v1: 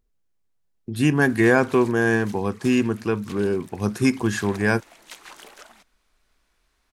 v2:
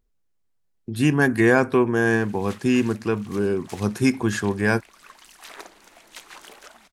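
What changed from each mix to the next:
background: entry +1.05 s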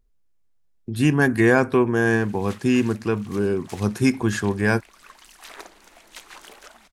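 speech: add low-shelf EQ 67 Hz +7.5 dB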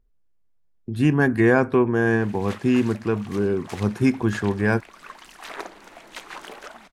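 background +8.0 dB
master: add high-shelf EQ 3,600 Hz −11.5 dB

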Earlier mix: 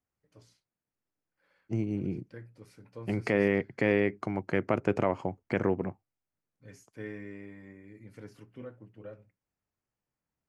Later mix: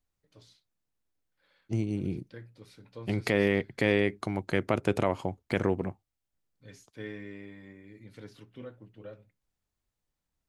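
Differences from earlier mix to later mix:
second voice: remove band-pass filter 100–4,800 Hz
master: add parametric band 3,700 Hz +14 dB 0.51 octaves

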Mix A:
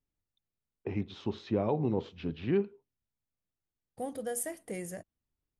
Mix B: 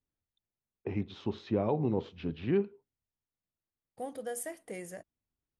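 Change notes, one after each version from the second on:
second voice: add low-shelf EQ 220 Hz −10.5 dB
master: add high-shelf EQ 6,800 Hz −6.5 dB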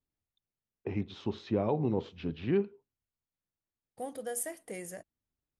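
master: add high-shelf EQ 6,800 Hz +6.5 dB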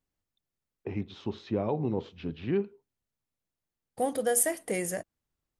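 second voice +10.5 dB

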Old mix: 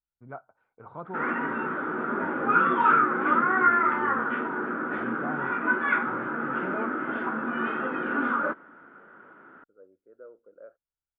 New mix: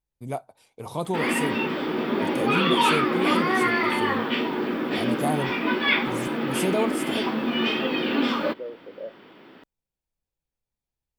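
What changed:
second voice: entry −1.60 s
background −5.5 dB
master: remove transistor ladder low-pass 1,500 Hz, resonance 80%

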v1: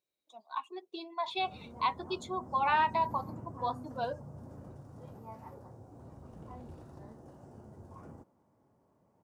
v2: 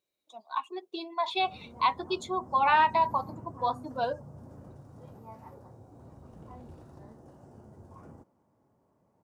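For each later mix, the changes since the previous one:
speech +5.0 dB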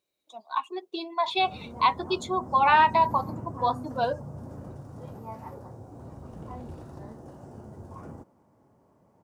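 speech +3.5 dB
background +7.5 dB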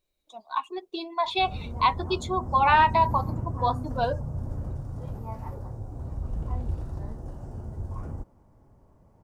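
master: remove high-pass filter 170 Hz 12 dB per octave

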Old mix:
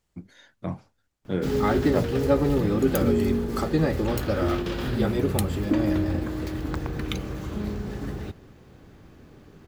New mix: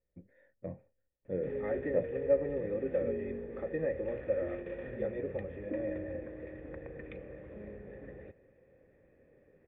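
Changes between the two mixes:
speech: add spectral tilt −2.5 dB per octave
master: add formant resonators in series e

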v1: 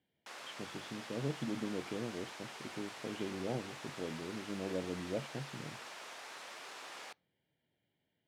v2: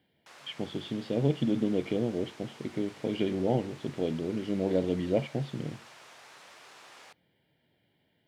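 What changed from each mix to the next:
speech +11.0 dB
background −3.5 dB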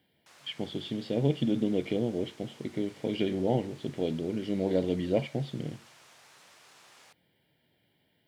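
background −6.5 dB
master: add high-shelf EQ 4,800 Hz +8 dB

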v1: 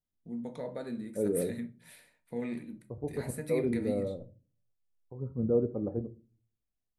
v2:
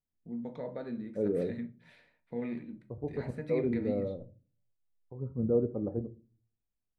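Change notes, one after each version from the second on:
master: add high-frequency loss of the air 210 metres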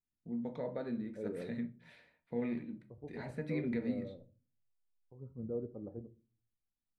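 second voice −11.5 dB

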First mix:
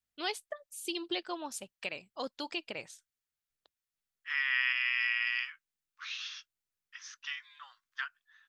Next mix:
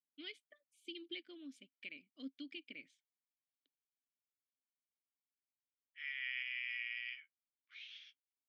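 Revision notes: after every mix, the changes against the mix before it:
second voice: entry +1.70 s
master: add formant filter i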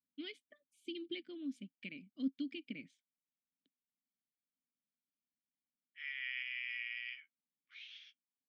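first voice: add low-shelf EQ 220 Hz +10.5 dB
master: add parametric band 190 Hz +13 dB 0.99 octaves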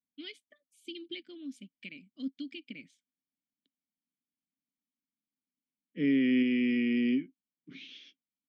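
second voice: remove Butterworth high-pass 1,200 Hz 48 dB per octave
master: add high-shelf EQ 3,700 Hz +9.5 dB

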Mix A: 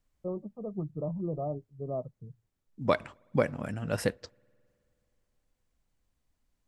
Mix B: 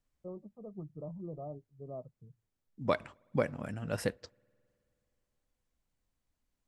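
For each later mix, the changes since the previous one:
first voice −9.0 dB
second voice −4.0 dB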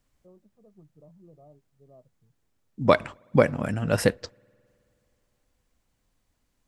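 first voice −10.5 dB
second voice +11.5 dB

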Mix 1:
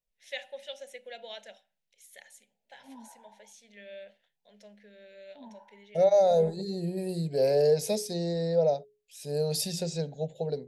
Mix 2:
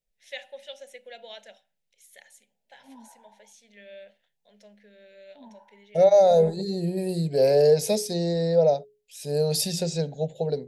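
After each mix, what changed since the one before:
second voice +5.0 dB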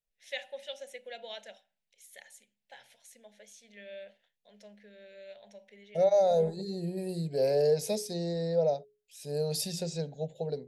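second voice −7.5 dB
background: muted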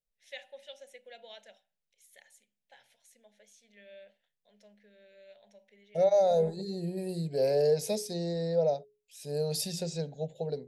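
first voice −6.5 dB

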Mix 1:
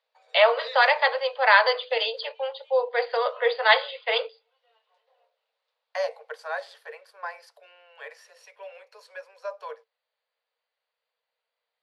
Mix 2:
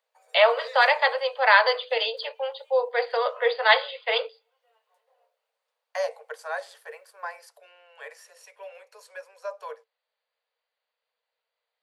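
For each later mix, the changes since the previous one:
second voice: add high shelf with overshoot 5,800 Hz +7 dB, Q 1.5
background: remove low-pass with resonance 3,900 Hz, resonance Q 3.2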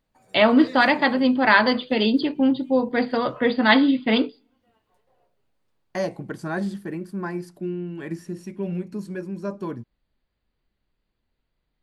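master: remove Chebyshev high-pass filter 450 Hz, order 10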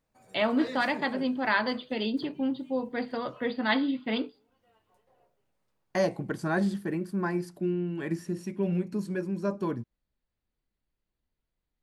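first voice −10.0 dB

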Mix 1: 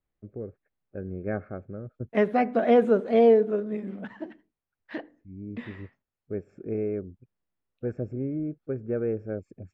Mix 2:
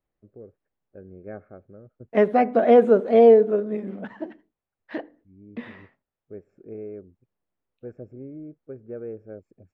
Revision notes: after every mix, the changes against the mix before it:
first voice −11.5 dB
master: add parametric band 560 Hz +5.5 dB 2.2 octaves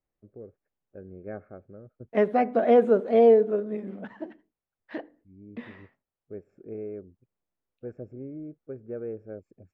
second voice −4.0 dB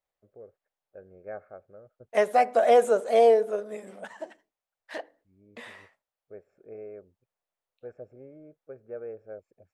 second voice: remove high-frequency loss of the air 340 metres
master: add low shelf with overshoot 420 Hz −10.5 dB, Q 1.5

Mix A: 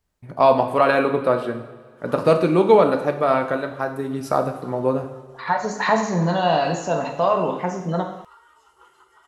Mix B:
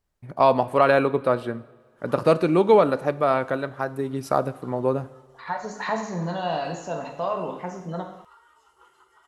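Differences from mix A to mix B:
first voice: send −11.0 dB
second voice −8.0 dB
background −3.5 dB

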